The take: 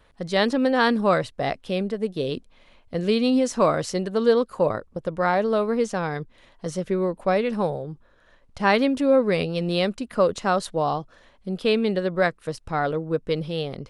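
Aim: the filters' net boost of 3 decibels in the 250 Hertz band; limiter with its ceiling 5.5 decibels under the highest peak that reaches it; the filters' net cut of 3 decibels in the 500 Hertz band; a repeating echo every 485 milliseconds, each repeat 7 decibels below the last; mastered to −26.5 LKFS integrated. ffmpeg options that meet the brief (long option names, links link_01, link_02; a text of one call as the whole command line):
ffmpeg -i in.wav -af "equalizer=frequency=250:width_type=o:gain=4.5,equalizer=frequency=500:width_type=o:gain=-4.5,alimiter=limit=-13dB:level=0:latency=1,aecho=1:1:485|970|1455|1940|2425:0.447|0.201|0.0905|0.0407|0.0183,volume=-2dB" out.wav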